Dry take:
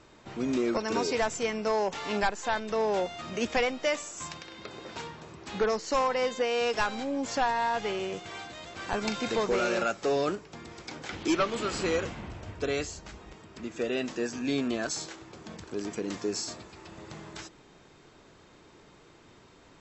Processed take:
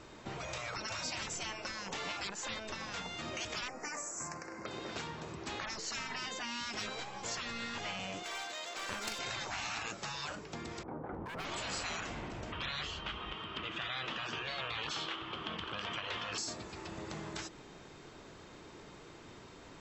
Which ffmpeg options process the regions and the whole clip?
-filter_complex "[0:a]asettb=1/sr,asplit=3[s0][s1][s2];[s0]atrim=end=3.684[s3];[s1]atrim=start=3.68:end=4.66,asetpts=PTS-STARTPTS,afade=t=in:d=0.004:c=qsin,afade=t=out:st=0.976:d=0.004:c=qsin,asuperstop=centerf=3400:order=4:qfactor=0.88,lowshelf=f=110:g=-9.5[s4];[s2]atrim=start=4.656[s5];[s3][s4]acrossfade=d=0.004:c1=hsin:c2=qsin[s6];[s6][s5]acrossfade=d=0.004:c1=qsin:c2=hsin,asettb=1/sr,asplit=3[s7][s8][s9];[s7]atrim=end=8.234[s10];[s8]atrim=start=8.23:end=9.19,asetpts=PTS-STARTPTS,afade=t=in:d=0.004:c=qsin,afade=t=out:st=0.956:d=0.004:c=qsin,highpass=500,highshelf=f=4600:g=6,aeval=exprs='clip(val(0),-1,0.0126)':c=same[s11];[s9]atrim=start=9.186[s12];[s10][s11]acrossfade=d=0.004:c1=hsin:c2=qsin[s13];[s13][s12]acrossfade=d=0.004:c1=qsin:c2=hsin,asettb=1/sr,asplit=3[s14][s15][s16];[s14]atrim=end=10.834[s17];[s15]atrim=start=10.83:end=11.45,asetpts=PTS-STARTPTS,afade=t=in:d=0.004:c=qsin,afade=t=out:st=0.616:d=0.004:c=qsin,lowpass=f=1100:w=0.5412,lowpass=f=1100:w=1.3066,volume=42.2,asoftclip=hard,volume=0.0237[s18];[s16]atrim=start=11.446[s19];[s17][s18]acrossfade=d=0.004:c1=hsin:c2=qsin[s20];[s20][s19]acrossfade=d=0.004:c1=qsin:c2=hsin,asettb=1/sr,asplit=3[s21][s22][s23];[s21]atrim=end=12.524[s24];[s22]atrim=start=12.52:end=16.38,asetpts=PTS-STARTPTS,afade=t=in:d=0.004:c=qsin,afade=t=out:st=3.856:d=0.004:c=qsin,lowpass=f=3100:t=q:w=9.7,equalizer=f=1200:t=o:w=0.62:g=11.5[s25];[s23]atrim=start=16.376[s26];[s24][s25]acrossfade=d=0.004:c1=hsin:c2=qsin[s27];[s27][s26]acrossfade=d=0.004:c1=qsin:c2=hsin,afftfilt=real='re*lt(hypot(re,im),0.0708)':imag='im*lt(hypot(re,im),0.0708)':win_size=1024:overlap=0.75,acompressor=threshold=0.00708:ratio=2,volume=1.41"

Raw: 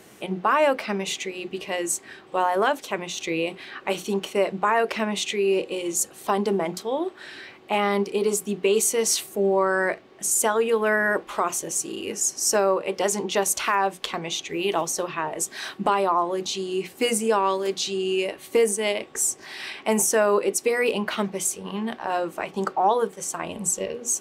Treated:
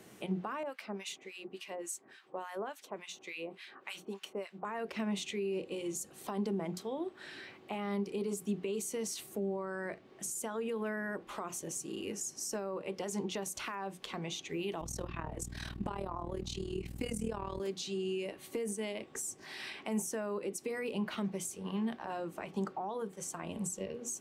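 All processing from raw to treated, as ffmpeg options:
-filter_complex "[0:a]asettb=1/sr,asplit=3[s0][s1][s2];[s0]atrim=end=0.634[s3];[s1]atrim=start=0.63:end=4.65,asetpts=PTS-STARTPTS,afade=t=in:d=0.004:c=qsin,afade=t=out:st=4.016:d=0.004:c=qsin,highpass=f=440:p=1,acrossover=split=1200[s4][s5];[s4]aeval=exprs='val(0)*(1-1/2+1/2*cos(2*PI*3.5*n/s))':c=same[s6];[s5]aeval=exprs='val(0)*(1-1/2-1/2*cos(2*PI*3.5*n/s))':c=same[s7];[s6][s7]amix=inputs=2:normalize=0[s8];[s2]atrim=start=4.646[s9];[s3][s8]acrossfade=d=0.004:c1=hsin:c2=qsin[s10];[s10][s9]acrossfade=d=0.004:c1=qsin:c2=hsin,asettb=1/sr,asplit=3[s11][s12][s13];[s11]atrim=end=14.814[s14];[s12]atrim=start=14.81:end=17.6,asetpts=PTS-STARTPTS,afade=t=in:d=0.004:c=qsin,afade=t=out:st=2.786:d=0.004:c=qsin,aeval=exprs='val(0)+0.02*(sin(2*PI*60*n/s)+sin(2*PI*2*60*n/s)/2+sin(2*PI*3*60*n/s)/3+sin(2*PI*4*60*n/s)/4+sin(2*PI*5*60*n/s)/5)':c=same,tremolo=f=39:d=0.824[s15];[s13]atrim=start=17.596[s16];[s14][s15]acrossfade=d=0.004:c1=hsin:c2=qsin[s17];[s17][s16]acrossfade=d=0.004:c1=qsin:c2=hsin,equalizer=f=160:w=0.61:g=4.5,alimiter=limit=0.178:level=0:latency=1:release=55,acrossover=split=250[s18][s19];[s19]acompressor=threshold=0.0251:ratio=2.5[s20];[s18][s20]amix=inputs=2:normalize=0,volume=0.398"

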